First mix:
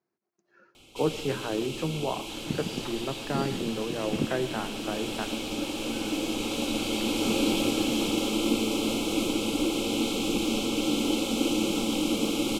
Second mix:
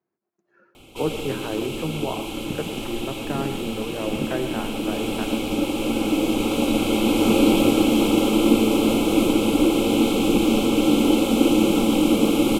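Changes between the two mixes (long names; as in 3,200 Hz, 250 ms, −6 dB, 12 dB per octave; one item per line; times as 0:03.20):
speech: send +7.5 dB
first sound +9.5 dB
master: add parametric band 5,200 Hz −10.5 dB 1.7 octaves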